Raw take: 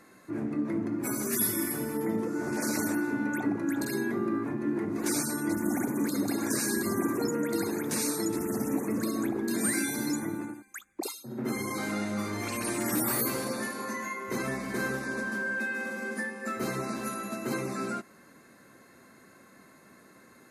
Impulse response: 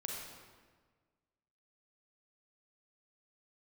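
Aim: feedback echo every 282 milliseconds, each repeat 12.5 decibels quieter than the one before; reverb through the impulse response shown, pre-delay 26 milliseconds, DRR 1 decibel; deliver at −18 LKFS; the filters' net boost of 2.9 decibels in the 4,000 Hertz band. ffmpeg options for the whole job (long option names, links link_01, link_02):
-filter_complex "[0:a]equalizer=frequency=4000:width_type=o:gain=3.5,aecho=1:1:282|564|846:0.237|0.0569|0.0137,asplit=2[link_01][link_02];[1:a]atrim=start_sample=2205,adelay=26[link_03];[link_02][link_03]afir=irnorm=-1:irlink=0,volume=-1dB[link_04];[link_01][link_04]amix=inputs=2:normalize=0,volume=10dB"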